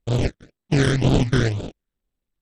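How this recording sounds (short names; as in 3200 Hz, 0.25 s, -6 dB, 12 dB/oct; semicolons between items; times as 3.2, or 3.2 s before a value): aliases and images of a low sample rate 1100 Hz, jitter 20%; phasing stages 12, 2 Hz, lowest notch 770–1900 Hz; SBC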